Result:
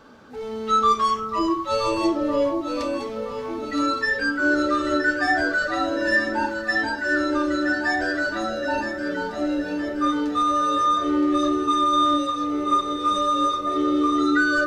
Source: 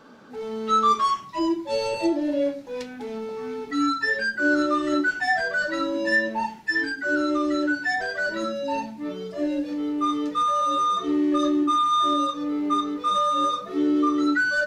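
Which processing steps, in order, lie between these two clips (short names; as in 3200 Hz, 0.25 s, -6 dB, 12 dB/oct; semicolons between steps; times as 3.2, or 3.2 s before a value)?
resonant low shelf 120 Hz +8 dB, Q 1.5; echo with dull and thin repeats by turns 0.485 s, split 1100 Hz, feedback 70%, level -5 dB; gain +1 dB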